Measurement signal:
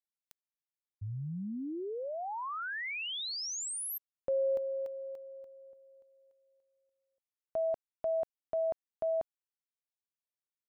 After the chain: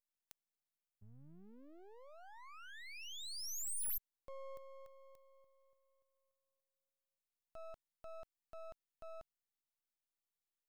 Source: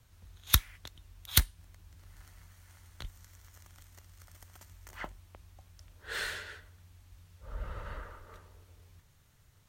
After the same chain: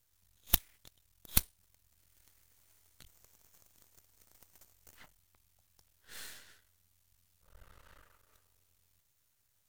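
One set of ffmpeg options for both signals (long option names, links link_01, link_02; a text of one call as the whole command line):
ffmpeg -i in.wav -af "crystalizer=i=6:c=0,aeval=exprs='max(val(0),0)':channel_layout=same,volume=-16.5dB" out.wav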